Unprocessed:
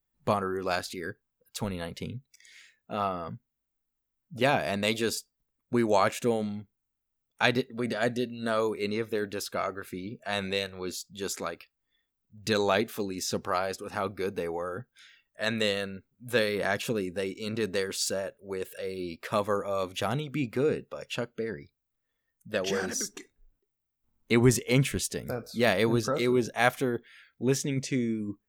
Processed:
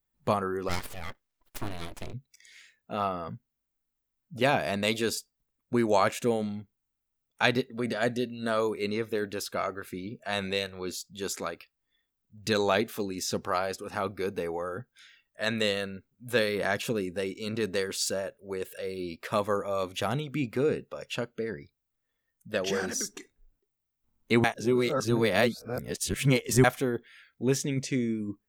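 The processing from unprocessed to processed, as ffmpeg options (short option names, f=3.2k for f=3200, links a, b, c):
-filter_complex "[0:a]asplit=3[a][b][c];[a]afade=t=out:st=0.68:d=0.02[d];[b]aeval=exprs='abs(val(0))':c=same,afade=t=in:st=0.68:d=0.02,afade=t=out:st=2.12:d=0.02[e];[c]afade=t=in:st=2.12:d=0.02[f];[d][e][f]amix=inputs=3:normalize=0,asplit=3[g][h][i];[g]atrim=end=24.442[j];[h]atrim=start=24.438:end=26.642,asetpts=PTS-STARTPTS,areverse[k];[i]atrim=start=26.638[l];[j][k]acrossfade=d=0.004:c1=hsin:c2=hsin[m];[m][l]acrossfade=d=0.004:c1=hsin:c2=hsin"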